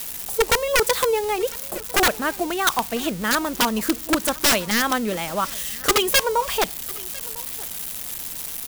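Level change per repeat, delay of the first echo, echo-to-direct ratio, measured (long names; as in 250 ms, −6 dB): repeats not evenly spaced, 1,002 ms, −21.5 dB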